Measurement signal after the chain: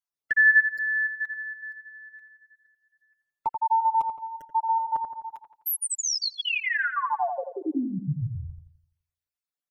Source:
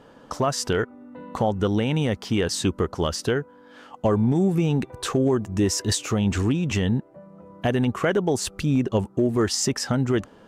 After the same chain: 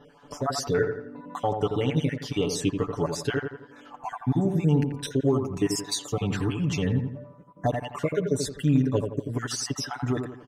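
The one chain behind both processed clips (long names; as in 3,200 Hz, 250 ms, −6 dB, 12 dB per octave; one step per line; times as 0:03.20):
time-frequency cells dropped at random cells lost 43%
comb filter 6.9 ms, depth 86%
on a send: delay with a low-pass on its return 85 ms, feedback 42%, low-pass 1,900 Hz, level −6 dB
on the sum: level −4.5 dB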